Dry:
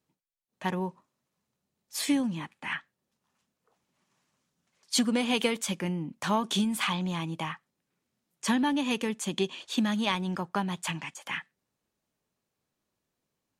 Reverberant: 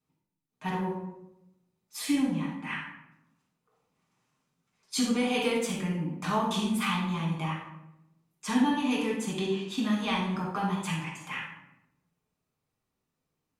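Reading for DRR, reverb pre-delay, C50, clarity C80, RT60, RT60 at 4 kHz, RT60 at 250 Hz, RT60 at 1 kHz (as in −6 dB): −5.5 dB, 5 ms, 2.0 dB, 6.0 dB, 0.90 s, 0.50 s, 1.2 s, 0.80 s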